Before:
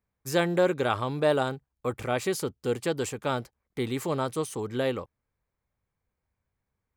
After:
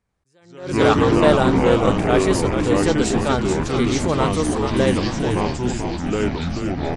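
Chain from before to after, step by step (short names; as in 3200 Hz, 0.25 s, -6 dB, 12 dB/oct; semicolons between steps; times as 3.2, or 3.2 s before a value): downsampling 22050 Hz; echoes that change speed 89 ms, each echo -4 st, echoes 3; on a send: frequency-shifting echo 0.433 s, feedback 57%, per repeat -83 Hz, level -6 dB; on the sum: attack slew limiter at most 100 dB/s; gain +7.5 dB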